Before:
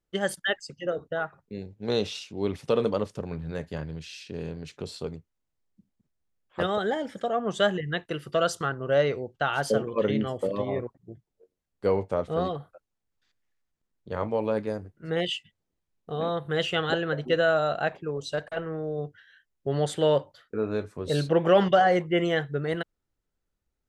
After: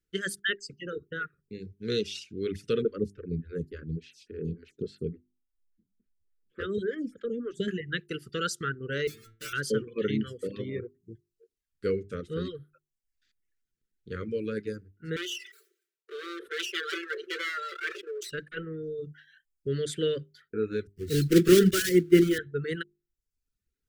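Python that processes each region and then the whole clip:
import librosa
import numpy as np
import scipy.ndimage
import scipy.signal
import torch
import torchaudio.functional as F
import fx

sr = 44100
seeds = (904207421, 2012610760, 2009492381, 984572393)

y = fx.chain(x, sr, fx.tilt_shelf(db=6.5, hz=900.0),
    fx.stagger_phaser(hz=3.5), at=(2.82, 7.68))
y = fx.chain(y, sr, fx.halfwave_hold(),
    fx.stiff_resonator(f0_hz=110.0, decay_s=0.49, stiffness=0.002), at=(9.07, 9.53))
y = fx.chain(y, sr, fx.lower_of_two(delay_ms=5.1),
    fx.cheby_ripple_highpass(hz=340.0, ripple_db=3),
    fx.sustainer(db_per_s=80.0), at=(15.16, 18.31))
y = fx.chain(y, sr, fx.block_float(bits=3),
    fx.low_shelf_res(hz=460.0, db=6.0, q=3.0),
    fx.band_widen(depth_pct=100), at=(20.87, 22.39))
y = scipy.signal.sosfilt(scipy.signal.cheby1(3, 1.0, [450.0, 1400.0], 'bandstop', fs=sr, output='sos'), y)
y = fx.hum_notches(y, sr, base_hz=50, count=8)
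y = fx.dereverb_blind(y, sr, rt60_s=0.7)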